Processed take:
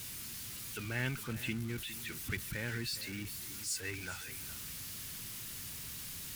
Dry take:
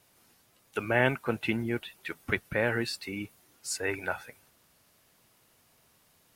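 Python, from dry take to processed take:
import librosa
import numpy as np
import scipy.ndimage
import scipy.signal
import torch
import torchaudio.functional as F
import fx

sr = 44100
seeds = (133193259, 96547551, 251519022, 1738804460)

y = x + 0.5 * 10.0 ** (-32.0 / 20.0) * np.sign(x)
y = fx.tone_stack(y, sr, knobs='6-0-2')
y = y + 10.0 ** (-15.0 / 20.0) * np.pad(y, (int(411 * sr / 1000.0), 0))[:len(y)]
y = y * 10.0 ** (8.5 / 20.0)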